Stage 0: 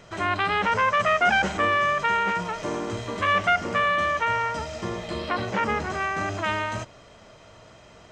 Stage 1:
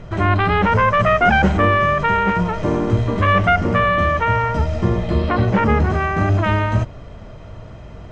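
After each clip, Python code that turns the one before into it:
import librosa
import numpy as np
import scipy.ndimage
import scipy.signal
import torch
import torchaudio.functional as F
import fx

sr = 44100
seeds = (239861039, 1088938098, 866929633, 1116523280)

y = fx.riaa(x, sr, side='playback')
y = y * librosa.db_to_amplitude(6.0)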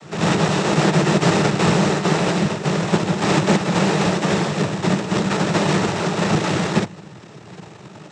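y = np.r_[np.sort(x[:len(x) // 256 * 256].reshape(-1, 256), axis=1).ravel(), x[len(x) // 256 * 256:]]
y = fx.noise_vocoder(y, sr, seeds[0], bands=12)
y = y * librosa.db_to_amplitude(-1.0)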